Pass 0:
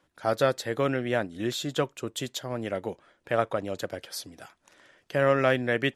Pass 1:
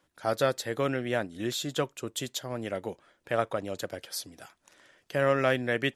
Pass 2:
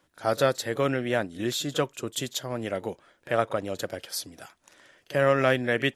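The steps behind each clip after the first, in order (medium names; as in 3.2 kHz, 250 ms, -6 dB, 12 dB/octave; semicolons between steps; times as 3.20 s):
treble shelf 4.8 kHz +5.5 dB; trim -2.5 dB
reverse echo 38 ms -19.5 dB; trim +3 dB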